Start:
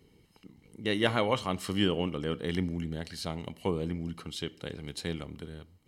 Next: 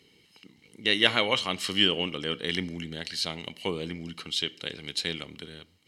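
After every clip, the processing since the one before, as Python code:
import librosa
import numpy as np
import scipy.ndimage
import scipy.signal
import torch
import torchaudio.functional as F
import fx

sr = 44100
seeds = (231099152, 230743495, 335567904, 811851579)

y = fx.weighting(x, sr, curve='D')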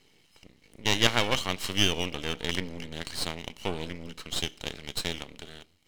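y = np.maximum(x, 0.0)
y = F.gain(torch.from_numpy(y), 2.0).numpy()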